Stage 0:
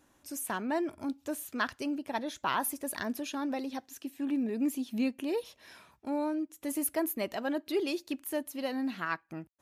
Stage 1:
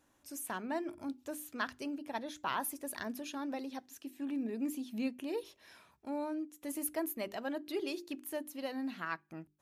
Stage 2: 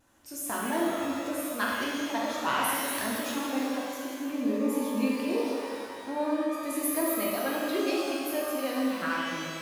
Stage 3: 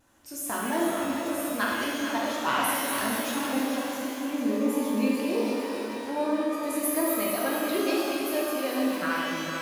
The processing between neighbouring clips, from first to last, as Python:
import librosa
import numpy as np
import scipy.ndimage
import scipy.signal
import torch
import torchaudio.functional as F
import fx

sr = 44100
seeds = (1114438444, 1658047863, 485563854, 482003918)

y1 = fx.hum_notches(x, sr, base_hz=50, count=8)
y1 = F.gain(torch.from_numpy(y1), -5.0).numpy()
y2 = fx.vibrato(y1, sr, rate_hz=1.0, depth_cents=23.0)
y2 = fx.rev_shimmer(y2, sr, seeds[0], rt60_s=2.1, semitones=12, shimmer_db=-8, drr_db=-4.5)
y2 = F.gain(torch.from_numpy(y2), 3.5).numpy()
y3 = fx.echo_feedback(y2, sr, ms=446, feedback_pct=48, wet_db=-8.5)
y3 = F.gain(torch.from_numpy(y3), 1.5).numpy()